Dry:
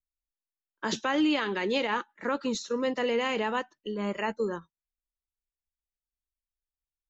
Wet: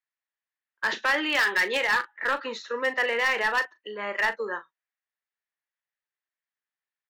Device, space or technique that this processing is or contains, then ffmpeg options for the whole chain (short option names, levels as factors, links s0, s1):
megaphone: -filter_complex "[0:a]highpass=640,lowpass=2900,equalizer=f=1800:t=o:w=0.43:g=10.5,asoftclip=type=hard:threshold=0.0631,asplit=2[s0][s1];[s1]adelay=38,volume=0.251[s2];[s0][s2]amix=inputs=2:normalize=0,asettb=1/sr,asplit=3[s3][s4][s5];[s3]atrim=end=1.234[s6];[s4]atrim=start=1.23:end=1.77,asetpts=PTS-STARTPTS,afade=t=in:d=0.004:c=qsin,afade=t=out:st=0.536:d=0.004:c=qsin,highshelf=f=3900:g=6.5[s7];[s5]atrim=start=1.766[s8];[s6][s7]acrossfade=d=0.004:c1=hsin:c2=qsin[s9];[s9][s8]acrossfade=d=0.004:c1=qsin:c2=hsin,volume=1.78"